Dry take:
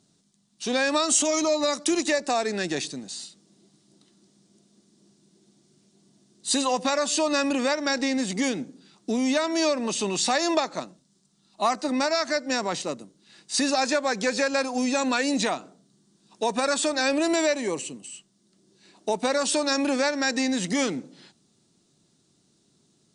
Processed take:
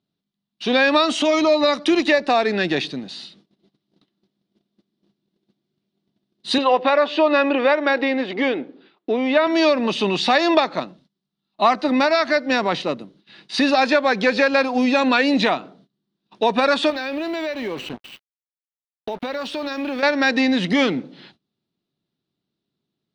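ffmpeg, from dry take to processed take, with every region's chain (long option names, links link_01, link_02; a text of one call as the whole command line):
ffmpeg -i in.wav -filter_complex "[0:a]asettb=1/sr,asplit=3[link_01][link_02][link_03];[link_01]atrim=end=6.584[link_04];[link_02]atrim=start=6.58:end=9.47,asetpts=PTS-STARTPTS,afade=type=in:duration=0.004:curve=qsin,afade=type=out:start_time=2.886:duration=0.004:curve=qsin,lowpass=2900,lowshelf=frequency=260:width_type=q:width=1.5:gain=-10.5[link_05];[link_03]atrim=start=9.466[link_06];[link_04][link_05]acrossfade=duration=0.004:curve1=hsin:curve2=qsin[link_07];[link_07][link_06]acrossfade=duration=0.004:curve1=qsin:curve2=hsin,asettb=1/sr,asplit=3[link_08][link_09][link_10];[link_08]atrim=end=16.904[link_11];[link_09]atrim=start=16.9:end=20.03,asetpts=PTS-STARTPTS,afade=type=in:duration=0.004:curve=qsin,afade=type=out:start_time=3.126:duration=0.004:curve=qsin,acrusher=bits=5:mix=0:aa=0.5,acompressor=threshold=-31dB:ratio=4:attack=3.2:release=140:knee=1:detection=peak[link_12];[link_10]atrim=start=20.026[link_13];[link_11][link_12]acrossfade=duration=0.004:curve1=hsin:curve2=qsin[link_14];[link_14][link_13]acrossfade=duration=0.004:curve1=qsin:curve2=hsin,highshelf=frequency=5000:width_type=q:width=1.5:gain=-12.5,agate=range=-21dB:threshold=-57dB:ratio=16:detection=peak,equalizer=frequency=7900:width_type=o:width=0.58:gain=-10,volume=7dB" out.wav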